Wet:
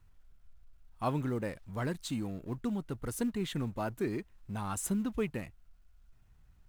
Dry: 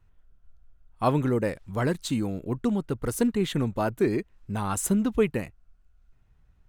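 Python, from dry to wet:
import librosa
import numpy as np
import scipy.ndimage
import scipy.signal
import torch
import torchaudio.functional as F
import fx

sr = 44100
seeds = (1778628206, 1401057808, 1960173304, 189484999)

y = fx.law_mismatch(x, sr, coded='mu')
y = fx.peak_eq(y, sr, hz=450.0, db=-3.5, octaves=0.8)
y = y * librosa.db_to_amplitude(-8.5)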